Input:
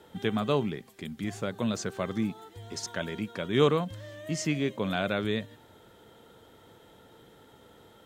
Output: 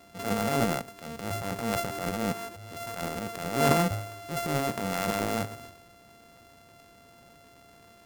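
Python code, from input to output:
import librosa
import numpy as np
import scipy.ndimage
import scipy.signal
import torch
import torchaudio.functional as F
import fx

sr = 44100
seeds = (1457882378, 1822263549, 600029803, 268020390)

y = np.r_[np.sort(x[:len(x) // 64 * 64].reshape(-1, 64), axis=1).ravel(), x[len(x) // 64 * 64:]]
y = fx.transient(y, sr, attack_db=-7, sustain_db=11)
y = fx.dynamic_eq(y, sr, hz=3800.0, q=0.85, threshold_db=-45.0, ratio=4.0, max_db=-4)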